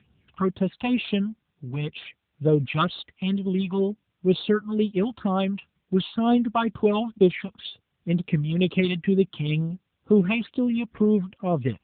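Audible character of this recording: phasing stages 6, 2.1 Hz, lowest notch 420–2100 Hz; a quantiser's noise floor 12-bit, dither triangular; AMR-NB

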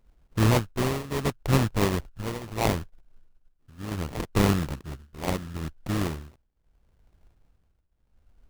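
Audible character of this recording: a buzz of ramps at a fixed pitch in blocks of 32 samples; tremolo triangle 0.73 Hz, depth 90%; aliases and images of a low sample rate 1500 Hz, jitter 20%

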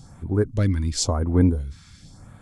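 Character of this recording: phasing stages 2, 0.95 Hz, lowest notch 530–4900 Hz

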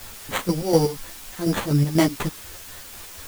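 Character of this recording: aliases and images of a low sample rate 5200 Hz, jitter 0%; chopped level 4.1 Hz, depth 65%, duty 50%; a quantiser's noise floor 8-bit, dither triangular; a shimmering, thickened sound

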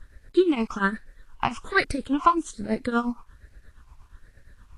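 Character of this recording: tremolo triangle 8.5 Hz, depth 90%; phasing stages 8, 1.2 Hz, lowest notch 500–1000 Hz; a quantiser's noise floor 12-bit, dither none; Vorbis

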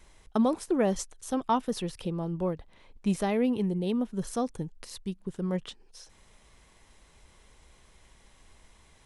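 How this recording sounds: noise floor -60 dBFS; spectral tilt -6.0 dB/oct

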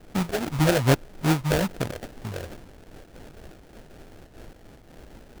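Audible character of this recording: a quantiser's noise floor 8-bit, dither triangular; phasing stages 8, 2.4 Hz, lowest notch 220–1400 Hz; aliases and images of a low sample rate 1100 Hz, jitter 20%; noise-modulated level

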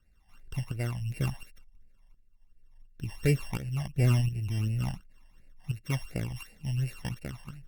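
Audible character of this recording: a buzz of ramps at a fixed pitch in blocks of 16 samples; phasing stages 12, 2.8 Hz, lowest notch 410–1100 Hz; tremolo saw up 1.4 Hz, depth 65%; Opus

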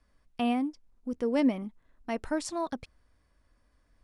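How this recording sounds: noise floor -70 dBFS; spectral tilt -5.0 dB/oct

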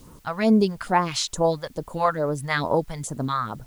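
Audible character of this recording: phasing stages 2, 2.3 Hz, lowest notch 270–3700 Hz; a quantiser's noise floor 10-bit, dither triangular

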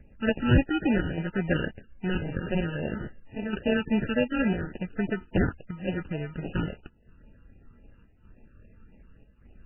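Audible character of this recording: chopped level 0.85 Hz, depth 60%, duty 85%; aliases and images of a low sample rate 1100 Hz, jitter 0%; phasing stages 12, 3.6 Hz, lowest notch 630–1400 Hz; MP3

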